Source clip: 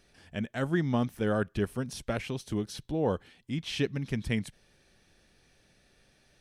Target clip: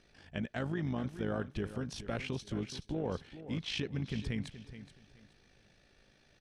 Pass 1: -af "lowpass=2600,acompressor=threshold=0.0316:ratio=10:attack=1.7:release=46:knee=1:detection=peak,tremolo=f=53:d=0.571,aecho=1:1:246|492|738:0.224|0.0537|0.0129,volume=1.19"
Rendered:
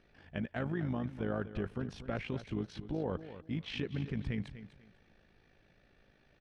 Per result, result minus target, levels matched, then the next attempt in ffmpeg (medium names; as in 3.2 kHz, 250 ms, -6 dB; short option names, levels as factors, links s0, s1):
8 kHz band -12.0 dB; echo 178 ms early
-af "lowpass=5800,acompressor=threshold=0.0316:ratio=10:attack=1.7:release=46:knee=1:detection=peak,tremolo=f=53:d=0.571,aecho=1:1:246|492|738:0.224|0.0537|0.0129,volume=1.19"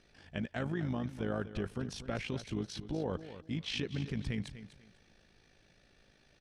echo 178 ms early
-af "lowpass=5800,acompressor=threshold=0.0316:ratio=10:attack=1.7:release=46:knee=1:detection=peak,tremolo=f=53:d=0.571,aecho=1:1:424|848|1272:0.224|0.0537|0.0129,volume=1.19"